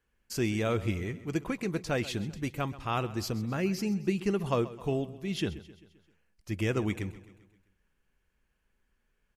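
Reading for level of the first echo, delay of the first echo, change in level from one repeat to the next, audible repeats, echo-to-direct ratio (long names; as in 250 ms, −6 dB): −17.0 dB, 131 ms, −5.5 dB, 4, −15.5 dB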